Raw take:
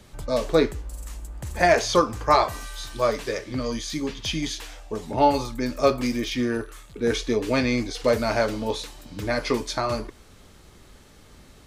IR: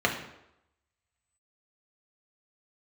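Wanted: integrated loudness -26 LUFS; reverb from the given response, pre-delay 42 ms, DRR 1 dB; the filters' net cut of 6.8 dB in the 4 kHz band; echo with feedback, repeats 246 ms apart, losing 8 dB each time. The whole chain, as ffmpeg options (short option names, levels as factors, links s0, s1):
-filter_complex "[0:a]equalizer=f=4000:t=o:g=-8.5,aecho=1:1:246|492|738|984|1230:0.398|0.159|0.0637|0.0255|0.0102,asplit=2[s0][s1];[1:a]atrim=start_sample=2205,adelay=42[s2];[s1][s2]afir=irnorm=-1:irlink=0,volume=0.188[s3];[s0][s3]amix=inputs=2:normalize=0,volume=0.631"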